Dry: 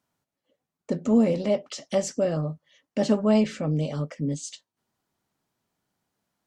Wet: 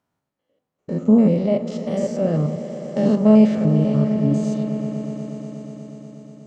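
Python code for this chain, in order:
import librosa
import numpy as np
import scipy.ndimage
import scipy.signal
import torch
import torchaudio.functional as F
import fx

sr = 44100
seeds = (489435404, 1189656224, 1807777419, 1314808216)

p1 = fx.spec_steps(x, sr, hold_ms=100)
p2 = fx.high_shelf(p1, sr, hz=2800.0, db=-10.0)
p3 = p2 + fx.echo_swell(p2, sr, ms=121, loudest=5, wet_db=-16.0, dry=0)
p4 = fx.dynamic_eq(p3, sr, hz=160.0, q=1.0, threshold_db=-34.0, ratio=4.0, max_db=4)
p5 = fx.doubler(p4, sr, ms=42.0, db=-13.0)
y = F.gain(torch.from_numpy(p5), 5.0).numpy()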